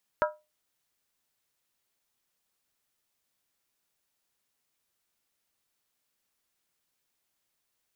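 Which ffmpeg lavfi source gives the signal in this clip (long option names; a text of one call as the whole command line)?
ffmpeg -f lavfi -i "aevalsrc='0.0944*pow(10,-3*t/0.25)*sin(2*PI*608*t)+0.0708*pow(10,-3*t/0.198)*sin(2*PI*969.2*t)+0.0531*pow(10,-3*t/0.171)*sin(2*PI*1298.7*t)+0.0398*pow(10,-3*t/0.165)*sin(2*PI*1396*t)+0.0299*pow(10,-3*t/0.153)*sin(2*PI*1613*t)':duration=0.63:sample_rate=44100" out.wav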